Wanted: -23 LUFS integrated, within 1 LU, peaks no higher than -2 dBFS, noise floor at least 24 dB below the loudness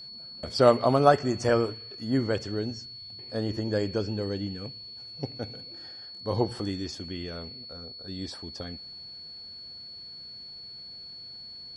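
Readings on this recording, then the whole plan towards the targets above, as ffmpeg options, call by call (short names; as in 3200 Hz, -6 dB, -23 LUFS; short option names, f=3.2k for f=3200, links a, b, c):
steady tone 4400 Hz; tone level -41 dBFS; loudness -28.5 LUFS; peak -5.0 dBFS; loudness target -23.0 LUFS
-> -af "bandreject=f=4.4k:w=30"
-af "volume=5.5dB,alimiter=limit=-2dB:level=0:latency=1"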